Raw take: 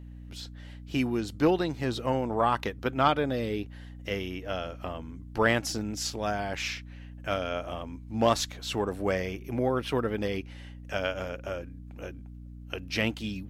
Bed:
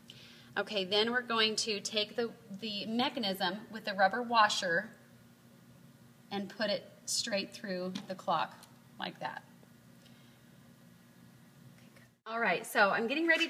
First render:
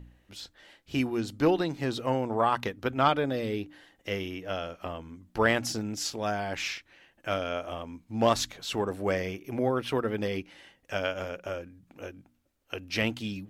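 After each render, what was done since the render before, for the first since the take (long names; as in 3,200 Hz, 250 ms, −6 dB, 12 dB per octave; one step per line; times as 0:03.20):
hum removal 60 Hz, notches 5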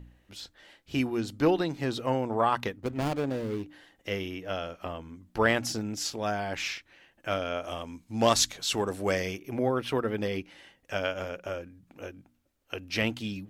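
0:02.77–0:03.63: running median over 41 samples
0:07.64–0:09.38: parametric band 7,700 Hz +9 dB 2.2 octaves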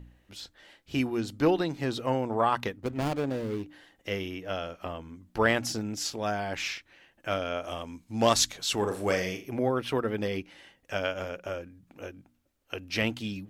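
0:08.78–0:09.46: flutter between parallel walls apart 6.6 metres, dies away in 0.32 s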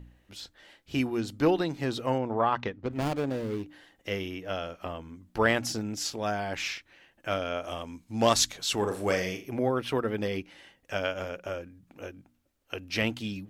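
0:02.18–0:02.91: high-frequency loss of the air 140 metres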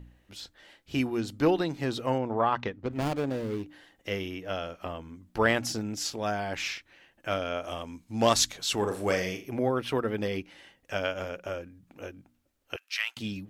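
0:12.76–0:13.17: high-pass filter 1,200 Hz 24 dB per octave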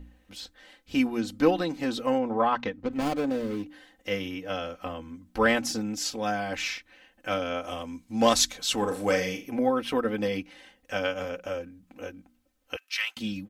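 comb filter 3.9 ms, depth 73%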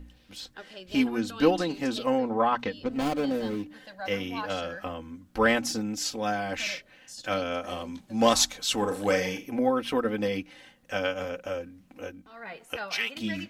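mix in bed −10.5 dB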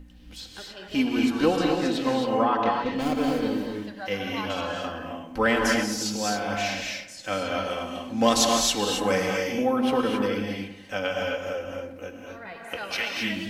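feedback echo with a low-pass in the loop 100 ms, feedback 51%, low-pass 2,200 Hz, level −10.5 dB
reverb whose tail is shaped and stops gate 290 ms rising, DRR 0.5 dB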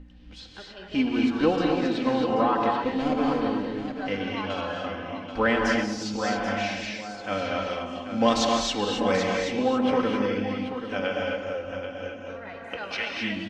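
high-frequency loss of the air 130 metres
single-tap delay 784 ms −9.5 dB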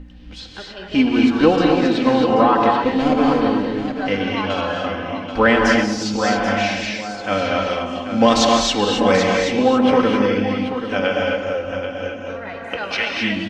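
level +8.5 dB
brickwall limiter −2 dBFS, peak gain reduction 2.5 dB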